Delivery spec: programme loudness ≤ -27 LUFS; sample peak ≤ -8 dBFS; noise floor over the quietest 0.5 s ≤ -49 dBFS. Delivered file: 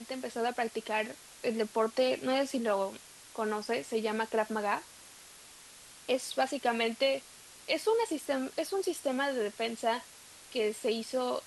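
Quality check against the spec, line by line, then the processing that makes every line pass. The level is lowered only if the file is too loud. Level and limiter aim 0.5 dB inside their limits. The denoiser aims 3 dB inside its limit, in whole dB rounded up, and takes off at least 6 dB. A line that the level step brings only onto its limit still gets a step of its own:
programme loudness -32.5 LUFS: OK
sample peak -16.0 dBFS: OK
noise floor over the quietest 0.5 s -53 dBFS: OK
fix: none

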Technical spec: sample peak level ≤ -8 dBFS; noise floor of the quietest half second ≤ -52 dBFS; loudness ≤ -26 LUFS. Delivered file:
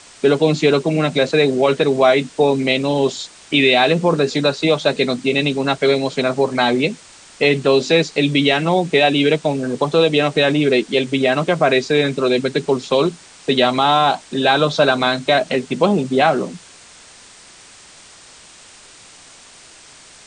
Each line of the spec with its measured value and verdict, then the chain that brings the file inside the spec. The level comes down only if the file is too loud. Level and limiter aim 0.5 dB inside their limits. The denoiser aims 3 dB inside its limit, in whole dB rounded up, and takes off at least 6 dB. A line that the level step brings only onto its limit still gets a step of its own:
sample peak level -2.0 dBFS: fail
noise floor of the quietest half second -44 dBFS: fail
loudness -16.5 LUFS: fail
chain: gain -10 dB

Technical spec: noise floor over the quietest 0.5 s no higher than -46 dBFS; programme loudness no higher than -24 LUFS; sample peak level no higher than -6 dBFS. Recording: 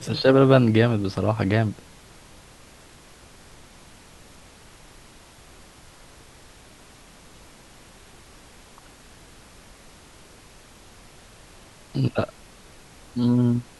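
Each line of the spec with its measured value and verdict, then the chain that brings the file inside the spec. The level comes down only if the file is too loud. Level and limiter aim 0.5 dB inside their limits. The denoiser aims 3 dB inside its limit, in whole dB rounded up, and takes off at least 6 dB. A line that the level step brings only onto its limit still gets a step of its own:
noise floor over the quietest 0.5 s -49 dBFS: OK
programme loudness -21.5 LUFS: fail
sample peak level -3.5 dBFS: fail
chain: gain -3 dB

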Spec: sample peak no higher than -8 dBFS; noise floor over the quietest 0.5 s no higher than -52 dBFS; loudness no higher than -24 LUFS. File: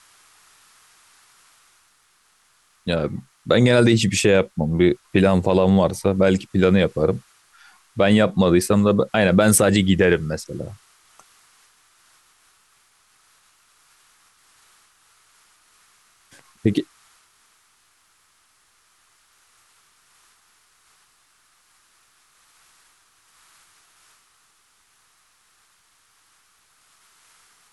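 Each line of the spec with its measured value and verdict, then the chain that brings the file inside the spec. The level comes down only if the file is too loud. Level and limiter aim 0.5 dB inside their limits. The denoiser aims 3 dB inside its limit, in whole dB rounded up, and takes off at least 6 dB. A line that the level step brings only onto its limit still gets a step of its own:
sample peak -5.0 dBFS: fail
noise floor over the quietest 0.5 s -61 dBFS: OK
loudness -18.5 LUFS: fail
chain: gain -6 dB

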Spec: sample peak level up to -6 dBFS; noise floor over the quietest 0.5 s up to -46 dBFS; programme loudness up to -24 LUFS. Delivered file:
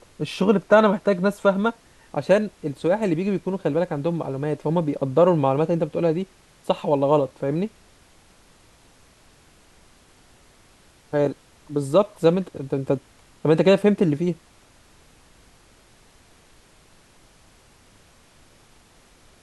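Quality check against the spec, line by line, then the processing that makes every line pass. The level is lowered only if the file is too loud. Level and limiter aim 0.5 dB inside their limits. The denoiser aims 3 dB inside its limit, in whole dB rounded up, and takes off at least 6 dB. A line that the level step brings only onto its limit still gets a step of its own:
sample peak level -4.0 dBFS: fail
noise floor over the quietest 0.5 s -54 dBFS: OK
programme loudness -22.0 LUFS: fail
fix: gain -2.5 dB

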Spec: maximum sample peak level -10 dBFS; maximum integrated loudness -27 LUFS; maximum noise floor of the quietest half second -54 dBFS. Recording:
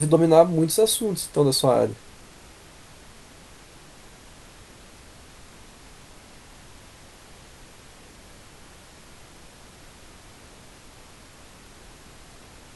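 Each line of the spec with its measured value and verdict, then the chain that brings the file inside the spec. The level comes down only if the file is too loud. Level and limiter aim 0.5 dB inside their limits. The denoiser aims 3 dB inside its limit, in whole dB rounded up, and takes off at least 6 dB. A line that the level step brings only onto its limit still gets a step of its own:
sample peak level -2.0 dBFS: fail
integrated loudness -20.0 LUFS: fail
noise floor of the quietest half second -48 dBFS: fail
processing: gain -7.5 dB; limiter -10.5 dBFS

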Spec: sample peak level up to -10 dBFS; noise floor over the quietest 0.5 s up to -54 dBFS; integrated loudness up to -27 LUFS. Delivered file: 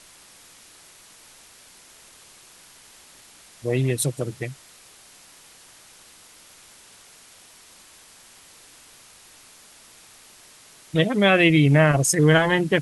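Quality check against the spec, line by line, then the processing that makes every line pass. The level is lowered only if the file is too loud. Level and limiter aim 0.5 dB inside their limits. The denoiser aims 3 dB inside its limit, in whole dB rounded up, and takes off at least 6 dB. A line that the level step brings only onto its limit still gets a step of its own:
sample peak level -5.0 dBFS: fail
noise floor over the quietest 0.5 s -50 dBFS: fail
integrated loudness -19.5 LUFS: fail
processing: gain -8 dB

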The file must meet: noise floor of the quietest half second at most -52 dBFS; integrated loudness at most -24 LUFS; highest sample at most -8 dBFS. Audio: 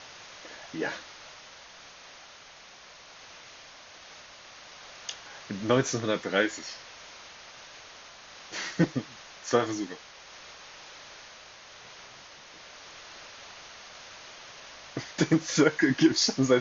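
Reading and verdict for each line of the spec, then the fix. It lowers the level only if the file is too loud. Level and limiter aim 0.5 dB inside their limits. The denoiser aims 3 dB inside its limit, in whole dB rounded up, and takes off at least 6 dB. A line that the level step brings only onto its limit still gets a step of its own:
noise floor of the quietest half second -51 dBFS: fail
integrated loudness -28.0 LUFS: OK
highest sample -9.0 dBFS: OK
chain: denoiser 6 dB, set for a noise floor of -51 dBFS

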